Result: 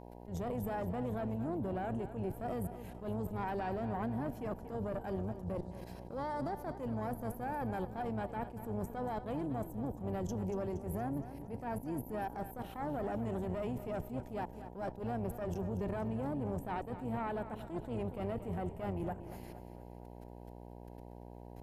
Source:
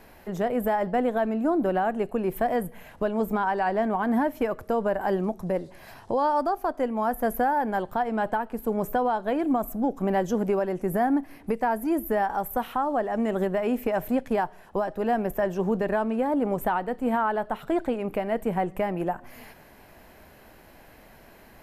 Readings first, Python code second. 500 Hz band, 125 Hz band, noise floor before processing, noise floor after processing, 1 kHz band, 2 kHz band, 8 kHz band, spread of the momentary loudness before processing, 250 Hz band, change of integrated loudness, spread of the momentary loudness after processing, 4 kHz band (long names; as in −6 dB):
−13.5 dB, −2.0 dB, −52 dBFS, −51 dBFS, −15.0 dB, −16.0 dB, −10.5 dB, 5 LU, −11.5 dB, −12.5 dB, 10 LU, −13.0 dB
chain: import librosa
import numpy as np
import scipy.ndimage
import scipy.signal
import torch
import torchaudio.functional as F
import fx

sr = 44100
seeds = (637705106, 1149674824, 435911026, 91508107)

p1 = fx.octave_divider(x, sr, octaves=1, level_db=-4.0)
p2 = scipy.signal.sosfilt(scipy.signal.butter(2, 12000.0, 'lowpass', fs=sr, output='sos'), p1)
p3 = fx.peak_eq(p2, sr, hz=1500.0, db=-9.5, octaves=2.0)
p4 = fx.level_steps(p3, sr, step_db=17)
p5 = fx.tube_stage(p4, sr, drive_db=27.0, bias=0.6)
p6 = fx.dmg_buzz(p5, sr, base_hz=60.0, harmonics=16, level_db=-51.0, tilt_db=-2, odd_only=False)
p7 = p6 + fx.echo_feedback(p6, sr, ms=234, feedback_pct=54, wet_db=-12.5, dry=0)
y = fx.attack_slew(p7, sr, db_per_s=150.0)